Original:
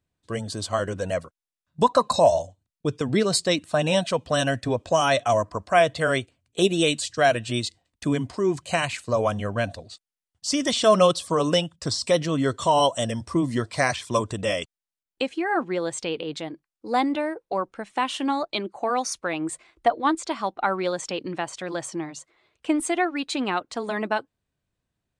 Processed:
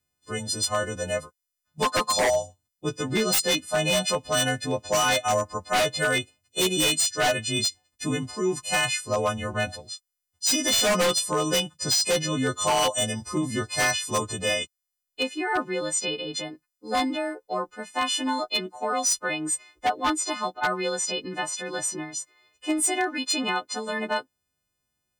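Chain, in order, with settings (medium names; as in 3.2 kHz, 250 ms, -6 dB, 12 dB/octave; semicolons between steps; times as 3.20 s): partials quantised in pitch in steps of 3 st; wavefolder -13.5 dBFS; trim -2.5 dB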